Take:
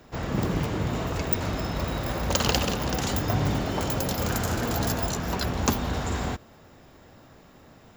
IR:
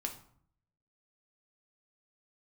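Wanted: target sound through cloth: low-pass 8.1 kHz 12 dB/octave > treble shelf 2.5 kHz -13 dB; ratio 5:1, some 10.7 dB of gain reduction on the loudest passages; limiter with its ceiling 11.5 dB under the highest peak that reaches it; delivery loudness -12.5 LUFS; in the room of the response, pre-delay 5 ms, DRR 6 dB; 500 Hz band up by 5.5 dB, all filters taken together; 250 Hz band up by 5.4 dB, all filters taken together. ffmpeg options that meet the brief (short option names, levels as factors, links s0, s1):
-filter_complex "[0:a]equalizer=f=250:t=o:g=5.5,equalizer=f=500:t=o:g=6,acompressor=threshold=0.0562:ratio=5,alimiter=limit=0.0668:level=0:latency=1,asplit=2[s0][s1];[1:a]atrim=start_sample=2205,adelay=5[s2];[s1][s2]afir=irnorm=-1:irlink=0,volume=0.501[s3];[s0][s3]amix=inputs=2:normalize=0,lowpass=8100,highshelf=f=2500:g=-13,volume=10"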